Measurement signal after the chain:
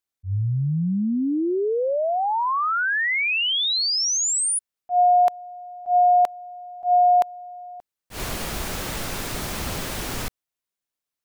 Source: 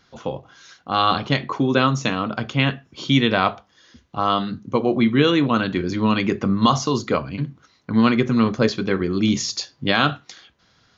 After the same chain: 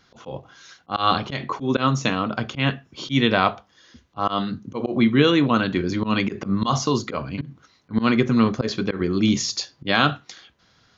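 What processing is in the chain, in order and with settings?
slow attack 106 ms

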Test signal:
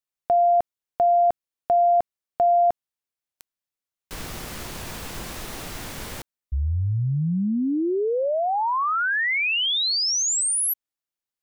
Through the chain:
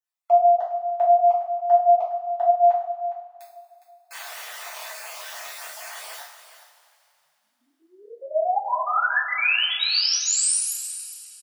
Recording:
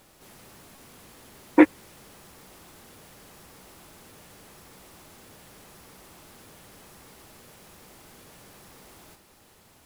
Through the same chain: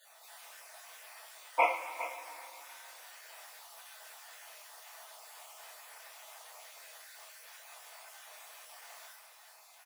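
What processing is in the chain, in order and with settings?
random holes in the spectrogram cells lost 33%; elliptic high-pass 650 Hz, stop band 70 dB; on a send: delay 410 ms -13 dB; on the sum: two-slope reverb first 0.48 s, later 2.9 s, from -16 dB, DRR -8 dB; trim -5.5 dB

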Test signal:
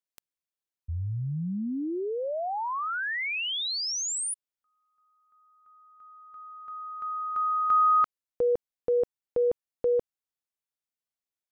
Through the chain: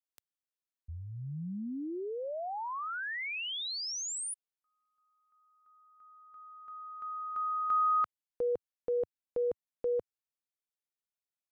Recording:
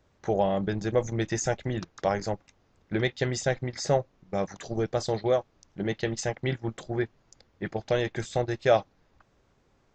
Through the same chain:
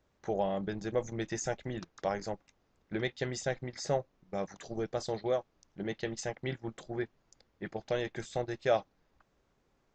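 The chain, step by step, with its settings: peaking EQ 100 Hz -5.5 dB 0.68 oct; trim -6.5 dB

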